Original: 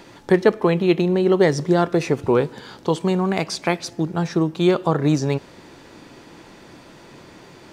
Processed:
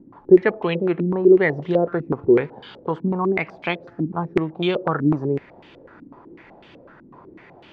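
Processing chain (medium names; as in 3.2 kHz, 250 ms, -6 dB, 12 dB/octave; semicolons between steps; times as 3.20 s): step-sequenced low-pass 8 Hz 260–3000 Hz; trim -5.5 dB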